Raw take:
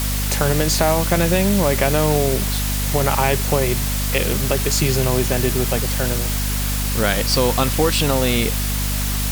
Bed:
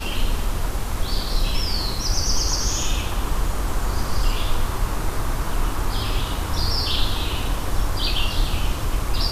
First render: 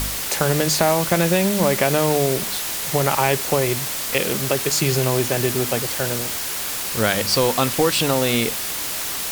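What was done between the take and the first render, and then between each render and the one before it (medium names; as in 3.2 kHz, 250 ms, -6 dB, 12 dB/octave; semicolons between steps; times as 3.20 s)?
de-hum 50 Hz, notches 5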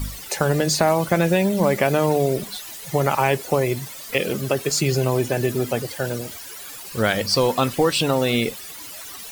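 noise reduction 15 dB, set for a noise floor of -27 dBFS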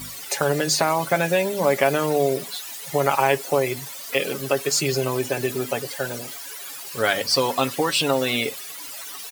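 high-pass 430 Hz 6 dB/octave; comb 7.2 ms, depth 50%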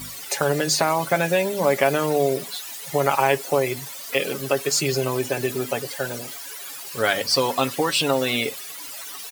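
no audible change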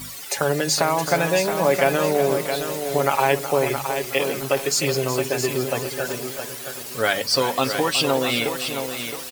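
on a send: delay 369 ms -11.5 dB; on the sum: bit-crushed delay 668 ms, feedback 35%, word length 6-bit, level -7 dB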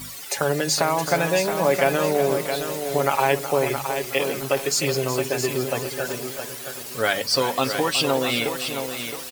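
trim -1 dB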